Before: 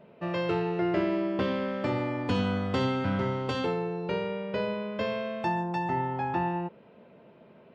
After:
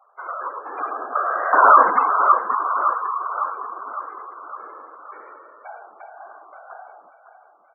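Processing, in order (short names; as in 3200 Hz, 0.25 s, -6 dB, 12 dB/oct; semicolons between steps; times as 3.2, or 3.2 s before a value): formant sharpening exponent 1.5; Doppler pass-by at 1.75, 58 m/s, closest 3 m; resonant high-pass 1200 Hz, resonance Q 9.5; spring tank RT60 1.1 s, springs 43 ms, chirp 50 ms, DRR 19 dB; whisperiser; LPF 1800 Hz 12 dB/oct; feedback echo 0.558 s, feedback 55%, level -10.5 dB; spectral gate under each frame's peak -20 dB strong; maximiser +32 dB; gain -1 dB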